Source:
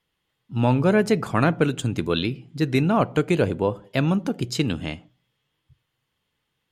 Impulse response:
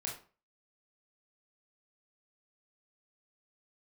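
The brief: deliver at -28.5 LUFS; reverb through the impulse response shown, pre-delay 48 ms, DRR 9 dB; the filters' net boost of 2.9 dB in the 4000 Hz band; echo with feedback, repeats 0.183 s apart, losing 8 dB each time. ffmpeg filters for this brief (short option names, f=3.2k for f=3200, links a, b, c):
-filter_complex "[0:a]equalizer=f=4k:t=o:g=3.5,aecho=1:1:183|366|549|732|915:0.398|0.159|0.0637|0.0255|0.0102,asplit=2[a][b];[1:a]atrim=start_sample=2205,adelay=48[c];[b][c]afir=irnorm=-1:irlink=0,volume=-9.5dB[d];[a][d]amix=inputs=2:normalize=0,volume=-7dB"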